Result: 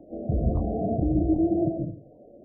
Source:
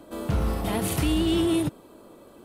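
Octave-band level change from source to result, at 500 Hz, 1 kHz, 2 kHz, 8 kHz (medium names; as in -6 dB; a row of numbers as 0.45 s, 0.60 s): +1.0 dB, -2.0 dB, under -40 dB, under -40 dB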